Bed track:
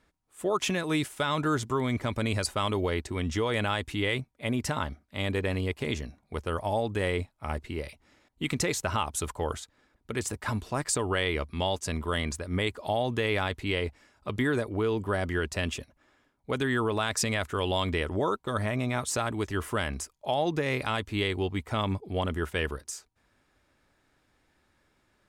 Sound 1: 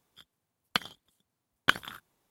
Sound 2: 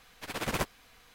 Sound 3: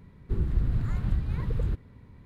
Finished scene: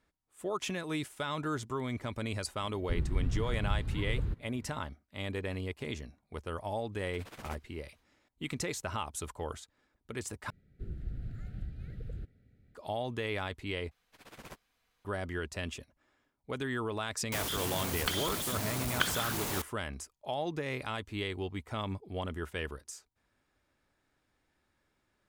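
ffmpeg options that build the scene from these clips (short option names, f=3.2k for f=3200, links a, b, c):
-filter_complex "[3:a]asplit=2[a][b];[2:a]asplit=2[c][d];[0:a]volume=-7.5dB[e];[b]asuperstop=centerf=1000:order=8:qfactor=2[f];[1:a]aeval=exprs='val(0)+0.5*0.0841*sgn(val(0))':c=same[g];[e]asplit=3[h][i][j];[h]atrim=end=10.504[k];[f]atrim=end=2.25,asetpts=PTS-STARTPTS,volume=-13.5dB[l];[i]atrim=start=12.746:end=13.914[m];[d]atrim=end=1.14,asetpts=PTS-STARTPTS,volume=-18dB[n];[j]atrim=start=15.046[o];[a]atrim=end=2.25,asetpts=PTS-STARTPTS,volume=-5.5dB,afade=t=in:d=0.004:c=hsin,afade=t=out:st=2.246:d=0.004:c=hsin,adelay=2590[p];[c]atrim=end=1.14,asetpts=PTS-STARTPTS,volume=-15.5dB,afade=t=in:d=0.05,afade=t=out:st=1.09:d=0.05,adelay=6910[q];[g]atrim=end=2.3,asetpts=PTS-STARTPTS,volume=-8dB,afade=t=in:d=0.004:c=hsin,afade=t=out:st=2.296:d=0.004:c=hsin,adelay=763812S[r];[k][l]acrossfade=d=0.004:c1=hsin:c2=hsin[s];[s][m]acrossfade=d=0.004:c1=hsin:c2=hsin[t];[t][n]acrossfade=d=0.004:c1=hsin:c2=hsin[u];[u][o]acrossfade=d=0.004:c1=hsin:c2=hsin[v];[v][p][q][r]amix=inputs=4:normalize=0"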